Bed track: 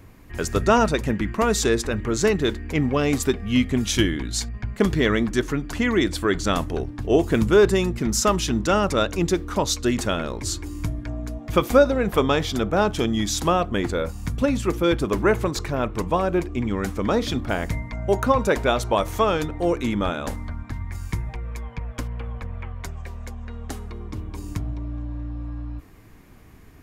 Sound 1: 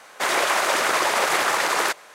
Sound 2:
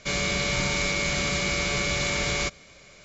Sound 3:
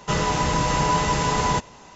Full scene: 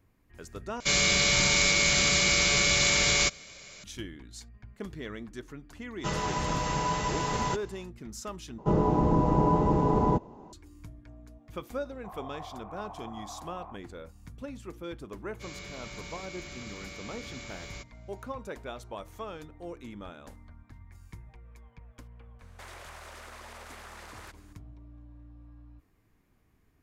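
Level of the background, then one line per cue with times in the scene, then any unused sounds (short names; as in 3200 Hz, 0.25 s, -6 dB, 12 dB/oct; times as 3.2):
bed track -19.5 dB
0.8 replace with 2 -2 dB + high shelf 2500 Hz +9.5 dB
5.96 add 3 -8.5 dB, fades 0.10 s
8.58 replace with 3 -1.5 dB + EQ curve 130 Hz 0 dB, 340 Hz +7 dB, 550 Hz -1 dB, 850 Hz -1 dB, 1800 Hz -20 dB, 6900 Hz -27 dB
11.84 add 1 -12 dB + vocal tract filter a
15.34 add 2 -18 dB, fades 0.10 s + hard clip -17.5 dBFS
22.39 add 1 -18 dB + compressor, threshold -26 dBFS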